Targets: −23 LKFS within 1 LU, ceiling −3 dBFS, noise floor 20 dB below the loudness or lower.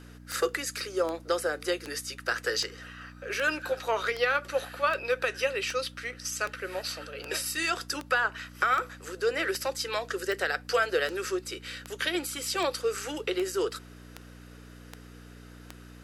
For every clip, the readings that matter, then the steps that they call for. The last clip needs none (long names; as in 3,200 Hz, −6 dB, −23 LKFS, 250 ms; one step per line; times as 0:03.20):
number of clicks 21; mains hum 60 Hz; hum harmonics up to 300 Hz; level of the hum −46 dBFS; integrated loudness −30.0 LKFS; sample peak −13.0 dBFS; target loudness −23.0 LKFS
→ click removal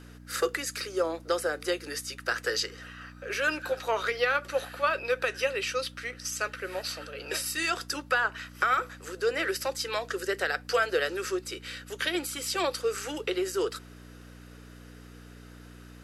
number of clicks 0; mains hum 60 Hz; hum harmonics up to 300 Hz; level of the hum −46 dBFS
→ hum removal 60 Hz, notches 5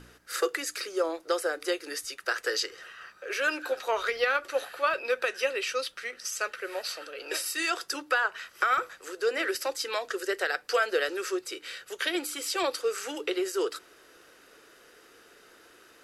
mains hum none found; integrated loudness −30.0 LKFS; sample peak −13.0 dBFS; target loudness −23.0 LKFS
→ level +7 dB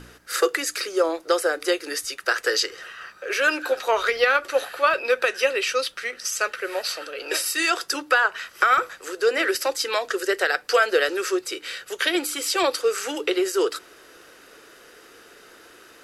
integrated loudness −23.0 LKFS; sample peak −6.0 dBFS; background noise floor −50 dBFS